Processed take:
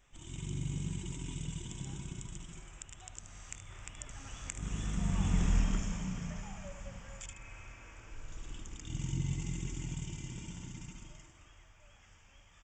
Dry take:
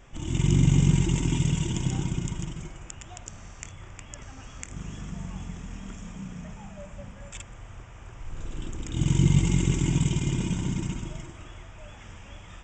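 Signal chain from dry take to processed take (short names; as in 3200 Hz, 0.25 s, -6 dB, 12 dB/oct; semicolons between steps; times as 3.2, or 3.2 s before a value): Doppler pass-by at 5.48, 10 m/s, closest 2.5 m; high shelf 7500 Hz +5 dB; spectral repair 7.33–8.28, 200–2600 Hz both; low shelf 75 Hz +7.5 dB; echo 75 ms -11 dB; mismatched tape noise reduction encoder only; gain +6 dB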